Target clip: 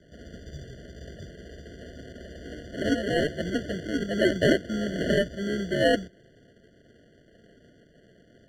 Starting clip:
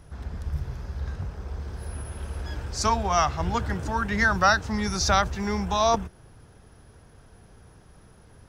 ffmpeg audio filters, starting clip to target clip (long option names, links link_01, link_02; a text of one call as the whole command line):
ffmpeg -i in.wav -filter_complex "[0:a]acrusher=samples=37:mix=1:aa=0.000001,acrossover=split=170 6900:gain=0.141 1 0.0891[link_01][link_02][link_03];[link_01][link_02][link_03]amix=inputs=3:normalize=0,afftfilt=real='re*eq(mod(floor(b*sr/1024/700),2),0)':imag='im*eq(mod(floor(b*sr/1024/700),2),0)':win_size=1024:overlap=0.75,volume=1.5dB" out.wav